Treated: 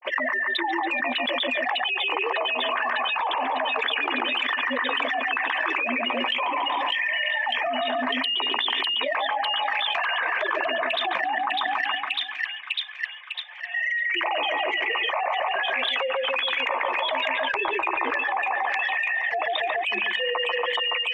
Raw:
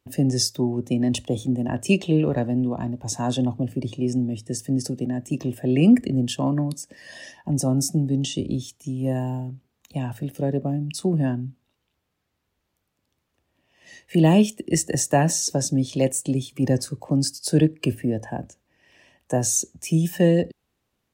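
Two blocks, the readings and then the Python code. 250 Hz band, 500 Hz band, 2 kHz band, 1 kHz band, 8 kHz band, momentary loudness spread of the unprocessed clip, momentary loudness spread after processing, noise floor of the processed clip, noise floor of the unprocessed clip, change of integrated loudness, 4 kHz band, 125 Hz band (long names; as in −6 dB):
−16.5 dB, −2.5 dB, +16.5 dB, +10.0 dB, below −30 dB, 11 LU, 2 LU, −35 dBFS, −77 dBFS, −1.0 dB, +10.0 dB, below −40 dB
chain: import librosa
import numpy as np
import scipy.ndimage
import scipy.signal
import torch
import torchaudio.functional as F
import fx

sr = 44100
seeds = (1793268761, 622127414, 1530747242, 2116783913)

y = fx.sine_speech(x, sr)
y = scipy.signal.sosfilt(scipy.signal.butter(4, 1000.0, 'highpass', fs=sr, output='sos'), y)
y = fx.rider(y, sr, range_db=5, speed_s=2.0)
y = fx.chorus_voices(y, sr, voices=4, hz=0.13, base_ms=13, depth_ms=1.9, mix_pct=30)
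y = fx.notch_comb(y, sr, f0_hz=1400.0)
y = fx.env_flanger(y, sr, rest_ms=5.7, full_db=-39.5)
y = fx.echo_split(y, sr, split_hz=2200.0, low_ms=141, high_ms=601, feedback_pct=52, wet_db=-6.0)
y = fx.env_flatten(y, sr, amount_pct=100)
y = y * librosa.db_to_amplitude(4.0)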